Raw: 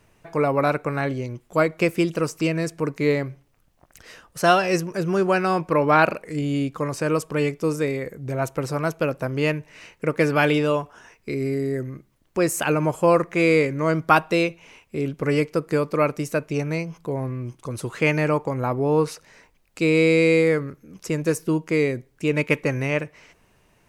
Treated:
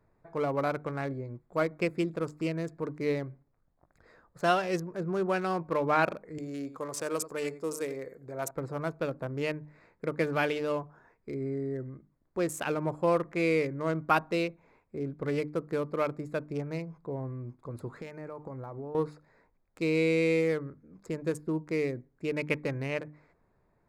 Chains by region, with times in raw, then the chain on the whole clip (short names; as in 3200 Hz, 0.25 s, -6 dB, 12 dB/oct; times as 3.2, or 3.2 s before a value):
6.38–8.51 tone controls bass -11 dB, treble +11 dB + echo 89 ms -13 dB
17.93–18.95 high shelf 8900 Hz +10.5 dB + compressor 8:1, threshold -27 dBFS
whole clip: Wiener smoothing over 15 samples; notches 50/100/150/200/250/300 Hz; gain -8.5 dB